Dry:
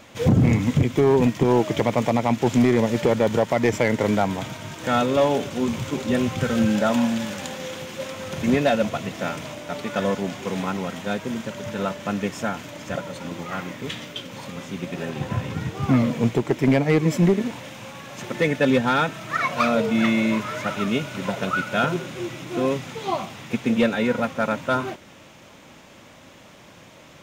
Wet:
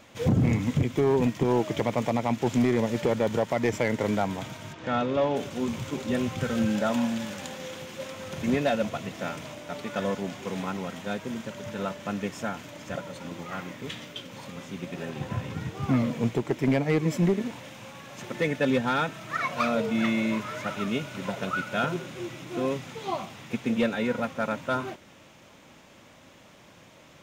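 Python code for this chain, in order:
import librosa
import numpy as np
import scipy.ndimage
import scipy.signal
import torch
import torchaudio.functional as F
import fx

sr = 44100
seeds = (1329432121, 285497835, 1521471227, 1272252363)

y = fx.air_absorb(x, sr, metres=150.0, at=(4.72, 5.35), fade=0.02)
y = y * 10.0 ** (-5.5 / 20.0)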